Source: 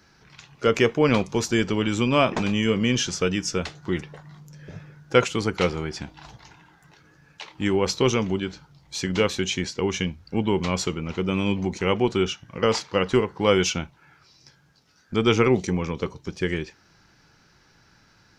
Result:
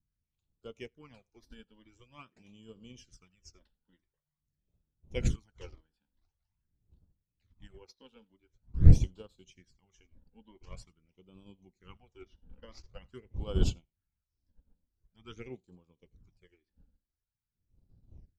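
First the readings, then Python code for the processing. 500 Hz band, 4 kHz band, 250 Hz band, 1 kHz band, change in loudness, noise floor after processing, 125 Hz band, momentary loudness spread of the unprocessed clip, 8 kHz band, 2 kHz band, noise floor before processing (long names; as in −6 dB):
−24.5 dB, −24.0 dB, −18.5 dB, below −25 dB, −6.0 dB, below −85 dBFS, −5.0 dB, 12 LU, −21.5 dB, −27.5 dB, −59 dBFS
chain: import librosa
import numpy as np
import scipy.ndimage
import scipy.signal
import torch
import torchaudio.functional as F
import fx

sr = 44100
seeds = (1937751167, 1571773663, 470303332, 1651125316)

p1 = fx.dmg_wind(x, sr, seeds[0], corner_hz=89.0, level_db=-23.0)
p2 = fx.high_shelf(p1, sr, hz=6000.0, db=10.0)
p3 = fx.phaser_stages(p2, sr, stages=12, low_hz=110.0, high_hz=2100.0, hz=0.46, feedback_pct=5)
p4 = p3 + fx.echo_single(p3, sr, ms=84, db=-19.0, dry=0)
p5 = fx.upward_expand(p4, sr, threshold_db=-32.0, expansion=2.5)
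y = F.gain(torch.from_numpy(p5), -4.0).numpy()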